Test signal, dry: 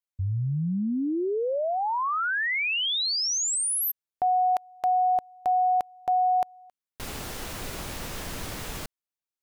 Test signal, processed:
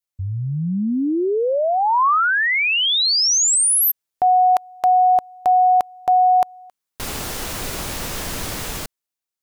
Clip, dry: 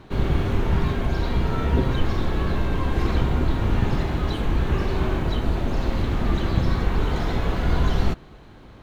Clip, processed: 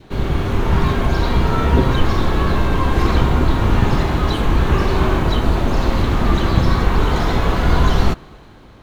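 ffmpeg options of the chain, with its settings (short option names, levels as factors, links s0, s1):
-af "bass=f=250:g=-1,treble=f=4000:g=3,dynaudnorm=f=100:g=13:m=1.68,adynamicequalizer=threshold=0.0141:dfrequency=1100:dqfactor=2:tfrequency=1100:tqfactor=2:attack=5:release=100:ratio=0.375:range=2:mode=boostabove:tftype=bell,volume=1.41"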